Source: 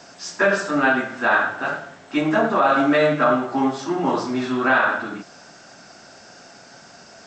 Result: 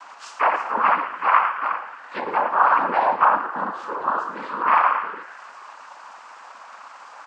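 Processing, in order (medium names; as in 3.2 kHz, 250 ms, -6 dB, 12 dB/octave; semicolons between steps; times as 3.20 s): comb 3.2 ms, depth 38%; in parallel at -10.5 dB: word length cut 6-bit, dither triangular; on the sum: noise-vocoded speech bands 8; band-pass filter 1.1 kHz, Q 4.2; on a send: frequency-shifting echo 110 ms, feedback 48%, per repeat +130 Hz, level -15 dB; on the sum: tape noise reduction on one side only encoder only; trim +4.5 dB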